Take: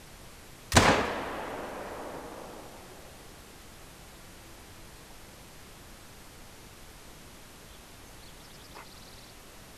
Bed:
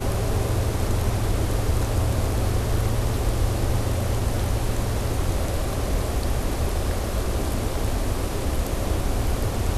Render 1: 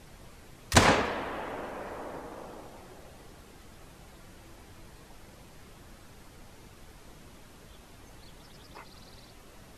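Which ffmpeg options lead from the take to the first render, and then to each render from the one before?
ffmpeg -i in.wav -af "afftdn=noise_reduction=6:noise_floor=-51" out.wav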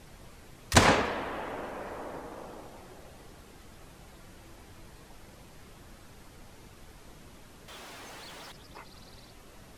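ffmpeg -i in.wav -filter_complex "[0:a]asettb=1/sr,asplit=3[link_01][link_02][link_03];[link_01]atrim=end=7.684[link_04];[link_02]atrim=start=7.68:end=8.52,asetpts=PTS-STARTPTS,afade=type=in:duration=0.004:curve=qsin,afade=type=out:start_time=0.836:duration=0.004:curve=qsin,asplit=2[link_05][link_06];[link_06]highpass=frequency=720:poles=1,volume=25dB,asoftclip=type=tanh:threshold=-38dB[link_07];[link_05][link_07]amix=inputs=2:normalize=0,lowpass=frequency=4900:poles=1,volume=-6dB[link_08];[link_03]atrim=start=8.516[link_09];[link_04][link_08]acrossfade=duration=0.004:curve1=hsin:curve2=qsin[link_10];[link_10][link_09]acrossfade=duration=0.004:curve1=qsin:curve2=hsin" out.wav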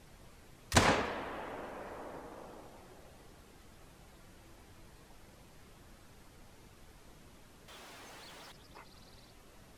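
ffmpeg -i in.wav -af "volume=-6dB" out.wav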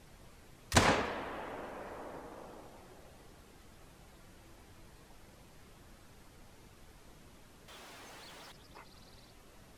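ffmpeg -i in.wav -af anull out.wav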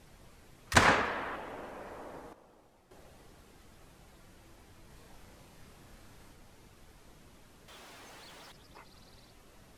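ffmpeg -i in.wav -filter_complex "[0:a]asettb=1/sr,asplit=3[link_01][link_02][link_03];[link_01]atrim=end=0.674[link_04];[link_02]atrim=start=0.67:end=1.36,asetpts=PTS-STARTPTS,afade=type=in:duration=0.004:curve=qsin,afade=type=out:start_time=0.686:duration=0.004:curve=qsin,equalizer=frequency=1500:width=0.96:gain=7.5[link_05];[link_03]atrim=start=1.356[link_06];[link_04][link_05]acrossfade=duration=0.004:curve1=hsin:curve2=qsin[link_07];[link_07][link_06]acrossfade=duration=0.004:curve1=qsin:curve2=hsin,asettb=1/sr,asplit=3[link_08][link_09][link_10];[link_08]atrim=end=4.874[link_11];[link_09]atrim=start=4.87:end=6.33,asetpts=PTS-STARTPTS,afade=type=in:duration=0.004:curve=qsin,afade=type=out:start_time=1.456:duration=0.004:curve=qsin,asplit=2[link_12][link_13];[link_13]adelay=32,volume=-2dB[link_14];[link_12][link_14]amix=inputs=2:normalize=0,atrim=end_sample=64386[link_15];[link_10]atrim=start=6.326[link_16];[link_11][link_15]acrossfade=duration=0.004:curve1=hsin:curve2=qsin[link_17];[link_17][link_16]acrossfade=duration=0.004:curve1=qsin:curve2=hsin,asplit=3[link_18][link_19][link_20];[link_18]atrim=end=2.332[link_21];[link_19]atrim=start=2.328:end=2.912,asetpts=PTS-STARTPTS,volume=-10dB[link_22];[link_20]atrim=start=2.908[link_23];[link_21][link_22]acrossfade=duration=0.004:curve1=hsin:curve2=hsin[link_24];[link_24][link_23]acrossfade=duration=0.004:curve1=hsin:curve2=hsin" out.wav

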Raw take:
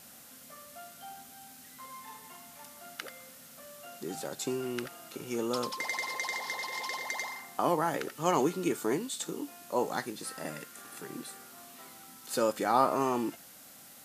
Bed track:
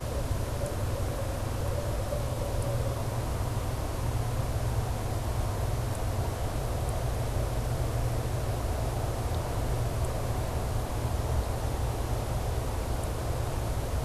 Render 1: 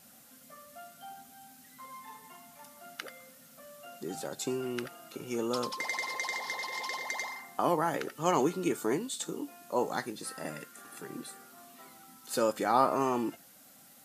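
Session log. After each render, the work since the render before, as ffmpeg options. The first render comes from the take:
ffmpeg -i in.wav -af "afftdn=noise_reduction=6:noise_floor=-53" out.wav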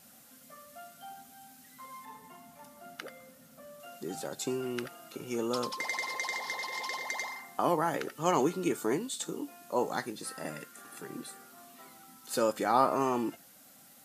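ffmpeg -i in.wav -filter_complex "[0:a]asettb=1/sr,asplit=3[link_01][link_02][link_03];[link_01]atrim=end=2.054[link_04];[link_02]atrim=start=2.05:end=3.8,asetpts=PTS-STARTPTS,afade=type=in:duration=0.004:curve=qsin,afade=type=out:start_time=1.746:duration=0.004:curve=qsin,tiltshelf=frequency=970:gain=4[link_05];[link_03]atrim=start=3.796[link_06];[link_04][link_05]acrossfade=duration=0.004:curve1=hsin:curve2=qsin[link_07];[link_07][link_06]acrossfade=duration=0.004:curve1=qsin:curve2=hsin" out.wav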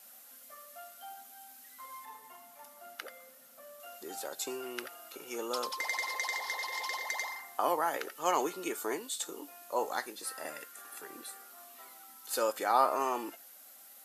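ffmpeg -i in.wav -af "highpass=500,equalizer=frequency=12000:width=3.2:gain=8" out.wav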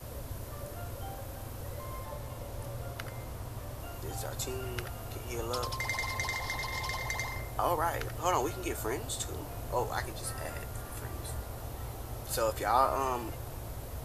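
ffmpeg -i in.wav -i bed.wav -filter_complex "[1:a]volume=-10.5dB[link_01];[0:a][link_01]amix=inputs=2:normalize=0" out.wav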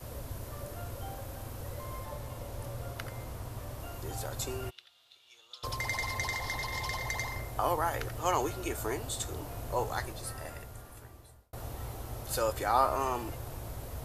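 ffmpeg -i in.wav -filter_complex "[0:a]asplit=3[link_01][link_02][link_03];[link_01]afade=type=out:start_time=4.69:duration=0.02[link_04];[link_02]bandpass=frequency=3600:width_type=q:width=5.9,afade=type=in:start_time=4.69:duration=0.02,afade=type=out:start_time=5.63:duration=0.02[link_05];[link_03]afade=type=in:start_time=5.63:duration=0.02[link_06];[link_04][link_05][link_06]amix=inputs=3:normalize=0,asplit=2[link_07][link_08];[link_07]atrim=end=11.53,asetpts=PTS-STARTPTS,afade=type=out:start_time=9.91:duration=1.62[link_09];[link_08]atrim=start=11.53,asetpts=PTS-STARTPTS,afade=type=in:duration=0.004:curve=hsin[link_10];[link_09][link_10]concat=n=2:v=0:a=1" out.wav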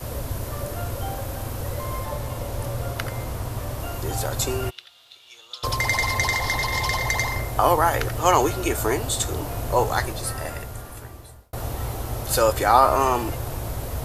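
ffmpeg -i in.wav -af "volume=11.5dB,alimiter=limit=-3dB:level=0:latency=1" out.wav

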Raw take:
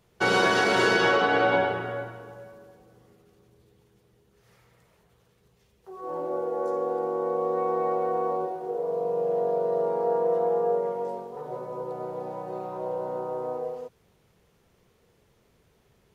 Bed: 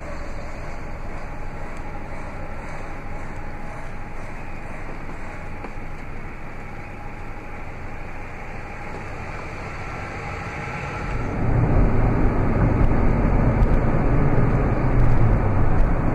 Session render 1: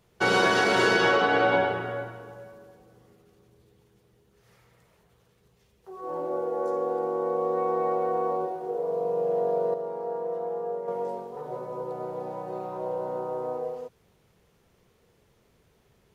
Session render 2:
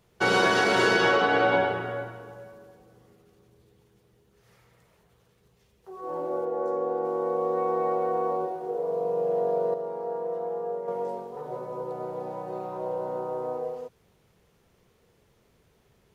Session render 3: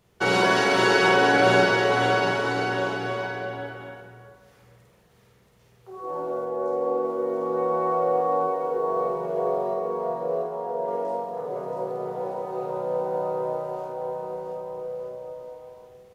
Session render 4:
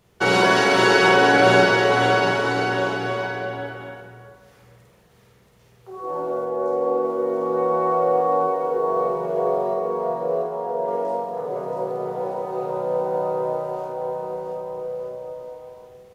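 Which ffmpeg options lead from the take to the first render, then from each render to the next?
ffmpeg -i in.wav -filter_complex "[0:a]asplit=3[link_01][link_02][link_03];[link_01]atrim=end=9.742[link_04];[link_02]atrim=start=9.738:end=10.882,asetpts=PTS-STARTPTS,volume=-7dB[link_05];[link_03]atrim=start=10.878[link_06];[link_04][link_05]acrossfade=duration=0.004:curve1=hsin:curve2=hsin[link_07];[link_07][link_06]acrossfade=duration=0.004:curve1=hsin:curve2=hsin" out.wav
ffmpeg -i in.wav -filter_complex "[0:a]asettb=1/sr,asplit=3[link_01][link_02][link_03];[link_01]atrim=end=6.454[link_04];[link_02]atrim=start=6.45:end=7.05,asetpts=PTS-STARTPTS,afade=type=in:duration=0.004:curve=qsin,afade=type=out:start_time=0.596:duration=0.004:curve=qsin,highshelf=frequency=3300:gain=-8.5[link_05];[link_03]atrim=start=7.046[link_06];[link_04][link_05]acrossfade=duration=0.004:curve1=hsin:curve2=qsin[link_07];[link_07][link_06]acrossfade=duration=0.004:curve1=qsin:curve2=hsin" out.wav
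ffmpeg -i in.wav -filter_complex "[0:a]asplit=2[link_01][link_02];[link_02]adelay=50,volume=-3dB[link_03];[link_01][link_03]amix=inputs=2:normalize=0,aecho=1:1:680|1224|1659|2007|2286:0.631|0.398|0.251|0.158|0.1" out.wav
ffmpeg -i in.wav -af "volume=3.5dB" out.wav

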